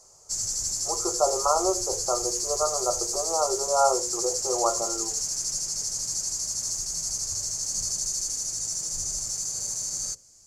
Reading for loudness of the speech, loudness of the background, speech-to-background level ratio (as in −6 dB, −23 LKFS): −28.0 LKFS, −27.0 LKFS, −1.0 dB